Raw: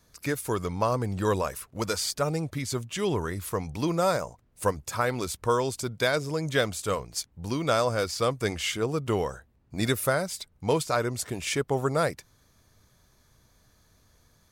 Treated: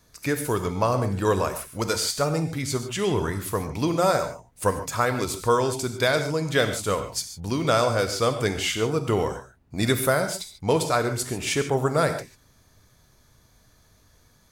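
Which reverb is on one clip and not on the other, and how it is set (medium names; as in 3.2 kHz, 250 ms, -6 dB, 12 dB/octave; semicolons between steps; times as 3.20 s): gated-style reverb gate 170 ms flat, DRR 7 dB; trim +3 dB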